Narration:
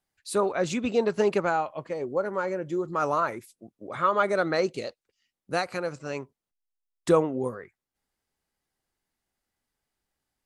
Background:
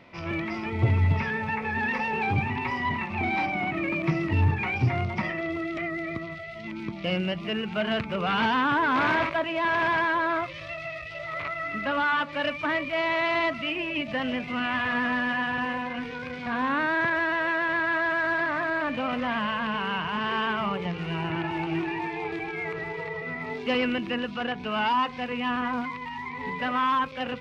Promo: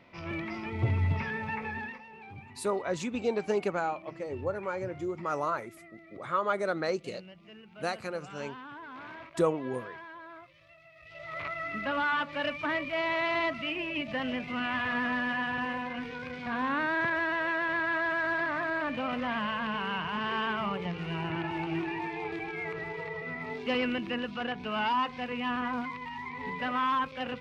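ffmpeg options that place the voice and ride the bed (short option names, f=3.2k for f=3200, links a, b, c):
-filter_complex "[0:a]adelay=2300,volume=-5.5dB[a];[1:a]volume=12dB,afade=t=out:st=1.63:d=0.37:silence=0.158489,afade=t=in:st=10.95:d=0.49:silence=0.133352[b];[a][b]amix=inputs=2:normalize=0"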